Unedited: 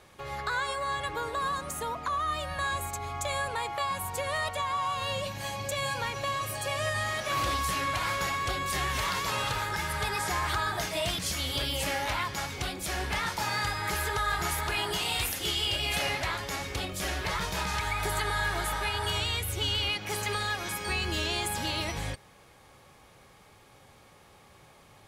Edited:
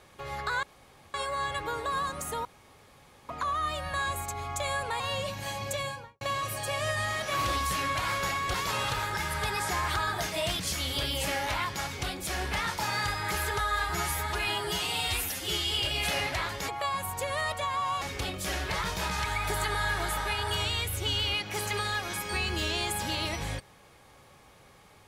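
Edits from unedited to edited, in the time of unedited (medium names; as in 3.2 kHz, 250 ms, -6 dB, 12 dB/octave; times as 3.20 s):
0.63 s: insert room tone 0.51 s
1.94 s: insert room tone 0.84 s
3.65–4.98 s: move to 16.57 s
5.70–6.19 s: studio fade out
8.52–9.13 s: delete
14.19–15.60 s: stretch 1.5×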